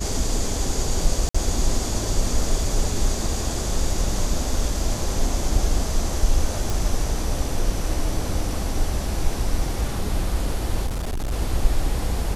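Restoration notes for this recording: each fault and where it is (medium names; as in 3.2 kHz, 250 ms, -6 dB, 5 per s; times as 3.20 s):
1.29–1.34 s: dropout 55 ms
6.70 s: pop
10.86–11.33 s: clipped -22.5 dBFS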